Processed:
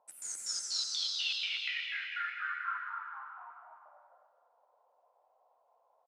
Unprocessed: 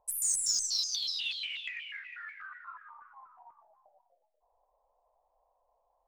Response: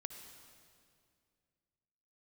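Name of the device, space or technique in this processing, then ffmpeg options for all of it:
station announcement: -filter_complex "[0:a]highpass=300,lowpass=3.7k,equalizer=f=1.4k:t=o:w=0.25:g=10,highshelf=f=10k:g=3,aecho=1:1:201.2|256.6:0.282|0.501[a];[1:a]atrim=start_sample=2205[b];[a][b]afir=irnorm=-1:irlink=0,volume=5.5dB"

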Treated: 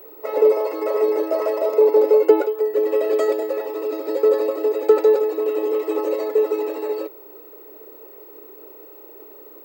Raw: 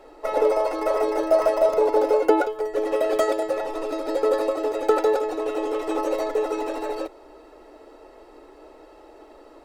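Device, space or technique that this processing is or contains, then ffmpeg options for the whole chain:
old television with a line whistle: -af "highpass=f=220:w=0.5412,highpass=f=220:w=1.3066,equalizer=f=240:t=q:w=4:g=-5,equalizer=f=420:t=q:w=4:g=8,equalizer=f=730:t=q:w=4:g=-10,equalizer=f=1.5k:t=q:w=4:g=-7,equalizer=f=3.4k:t=q:w=4:g=-6,equalizer=f=5.9k:t=q:w=4:g=-8,lowpass=f=8k:w=0.5412,lowpass=f=8k:w=1.3066,aeval=exprs='val(0)+0.00794*sin(2*PI*15734*n/s)':c=same"

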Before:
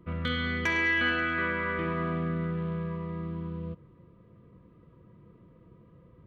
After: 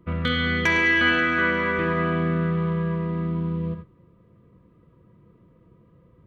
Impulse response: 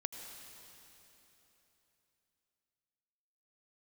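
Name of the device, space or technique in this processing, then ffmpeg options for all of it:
keyed gated reverb: -filter_complex "[0:a]asplit=3[a][b][c];[1:a]atrim=start_sample=2205[d];[b][d]afir=irnorm=-1:irlink=0[e];[c]apad=whole_len=276203[f];[e][f]sidechaingate=range=-33dB:threshold=-45dB:ratio=16:detection=peak,volume=3.5dB[g];[a][g]amix=inputs=2:normalize=0"

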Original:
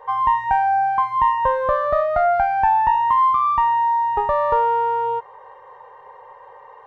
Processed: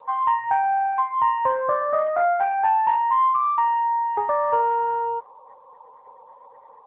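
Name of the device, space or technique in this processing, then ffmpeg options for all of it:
mobile call with aggressive noise cancelling: -af "highpass=f=160:p=1,afftdn=nr=33:nf=-40,volume=-2dB" -ar 8000 -c:a libopencore_amrnb -b:a 10200

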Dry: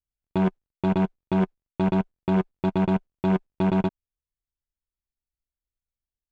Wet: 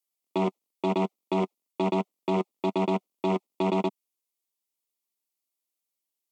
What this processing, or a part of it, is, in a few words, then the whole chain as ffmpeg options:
PA system with an anti-feedback notch: -af "highpass=130,highpass=f=230:w=0.5412,highpass=f=230:w=1.3066,asuperstop=centerf=1600:order=4:qfactor=2.4,aemphasis=mode=production:type=cd,alimiter=limit=-20.5dB:level=0:latency=1:release=10,volume=3.5dB"

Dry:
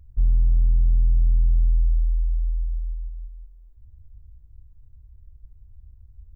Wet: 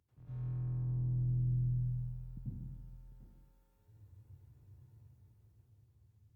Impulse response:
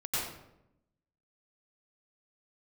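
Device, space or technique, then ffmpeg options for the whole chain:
far-field microphone of a smart speaker: -filter_complex "[0:a]asettb=1/sr,asplit=3[a][b][c];[a]atrim=end=2.374[d];[b]atrim=start=2.37:end=3.12,asetpts=PTS-STARTPTS,afade=t=in:d=0.004:c=qsin,afade=t=out:st=0.746:d=0.004:c=qsin,adynamicequalizer=threshold=0.00708:dfrequency=110:dqfactor=0.76:tfrequency=110:tqfactor=0.76:attack=5:release=100:ratio=0.375:range=3:mode=boostabove:tftype=bell[e];[c]atrim=start=3.116[f];[d][e]acrossfade=d=0.004:c1=hsin:c2=qsin[g];[g][f]acrossfade=d=0.004:c1=qsin:c2=hsin[h];[1:a]atrim=start_sample=2205[i];[h][i]afir=irnorm=-1:irlink=0,highpass=f=130:w=0.5412,highpass=f=130:w=1.3066,dynaudnorm=f=210:g=11:m=8dB,volume=-7.5dB" -ar 48000 -c:a libopus -b:a 48k

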